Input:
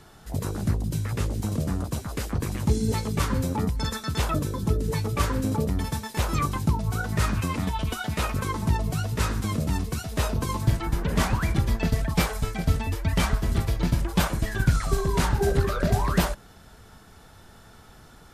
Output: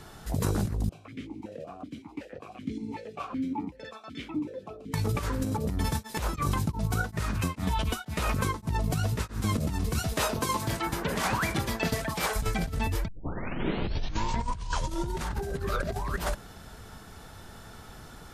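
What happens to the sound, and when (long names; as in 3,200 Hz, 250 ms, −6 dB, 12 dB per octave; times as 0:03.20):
0:00.89–0:04.94: formant filter that steps through the vowels 5.3 Hz
0:05.77–0:09.53: tremolo along a rectified sine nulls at 3.4 Hz → 1.3 Hz
0:10.13–0:12.36: high-pass filter 390 Hz 6 dB per octave
0:13.08: tape start 2.22 s
whole clip: compressor whose output falls as the input rises −29 dBFS, ratio −1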